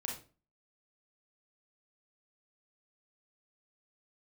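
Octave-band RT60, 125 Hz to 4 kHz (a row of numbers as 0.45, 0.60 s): 0.45, 0.45, 0.40, 0.30, 0.30, 0.30 s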